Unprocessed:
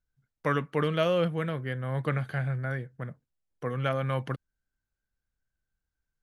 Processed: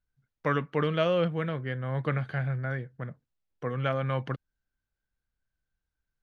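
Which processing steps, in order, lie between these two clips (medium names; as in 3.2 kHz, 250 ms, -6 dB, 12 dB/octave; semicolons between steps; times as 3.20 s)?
low-pass 4.9 kHz 12 dB/octave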